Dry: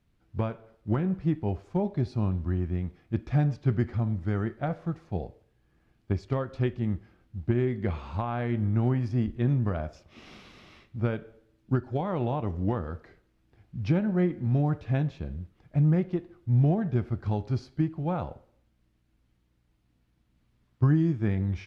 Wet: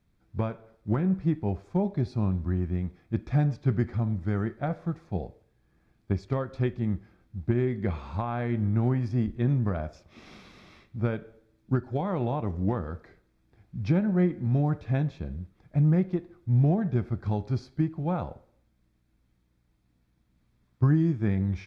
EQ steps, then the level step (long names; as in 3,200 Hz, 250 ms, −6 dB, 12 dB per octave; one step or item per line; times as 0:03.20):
parametric band 190 Hz +3.5 dB 0.2 octaves
notch filter 2,900 Hz, Q 7.5
0.0 dB